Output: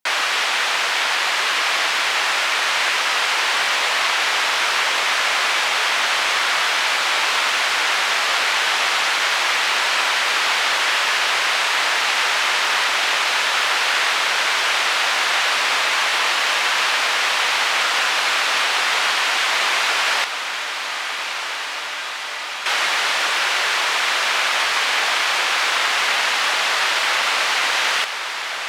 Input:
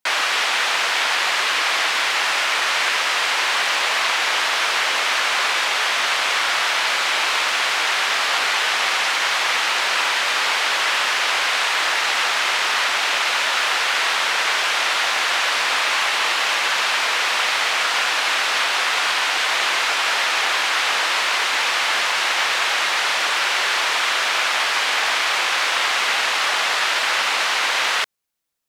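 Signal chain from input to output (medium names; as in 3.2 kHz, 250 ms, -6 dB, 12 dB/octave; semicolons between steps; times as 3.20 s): 20.24–22.66 s: inharmonic resonator 290 Hz, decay 0.63 s, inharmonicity 0.008; echo that smears into a reverb 1475 ms, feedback 74%, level -9.5 dB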